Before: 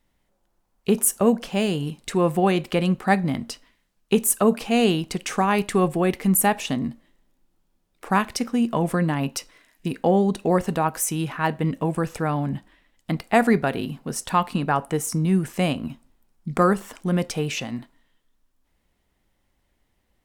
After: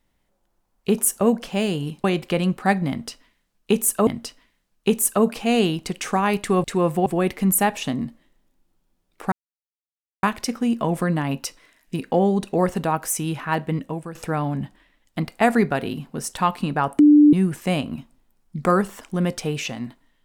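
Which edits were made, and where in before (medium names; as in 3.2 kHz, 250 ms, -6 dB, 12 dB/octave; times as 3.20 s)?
2.04–2.46 s: move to 5.89 s
3.32–4.49 s: loop, 2 plays
8.15 s: insert silence 0.91 s
11.58–12.07 s: fade out, to -13.5 dB
14.91–15.25 s: bleep 296 Hz -8 dBFS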